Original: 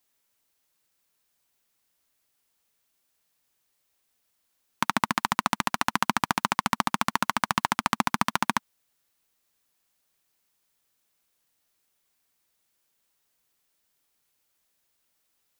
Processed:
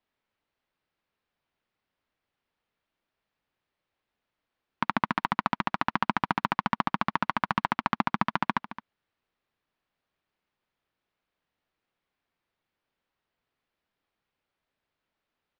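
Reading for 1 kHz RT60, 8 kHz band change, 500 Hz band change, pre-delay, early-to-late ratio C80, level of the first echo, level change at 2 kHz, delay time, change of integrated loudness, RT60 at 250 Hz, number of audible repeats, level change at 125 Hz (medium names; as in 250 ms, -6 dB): no reverb, under -20 dB, -1.0 dB, no reverb, no reverb, -14.5 dB, -2.5 dB, 218 ms, -2.0 dB, no reverb, 1, +0.5 dB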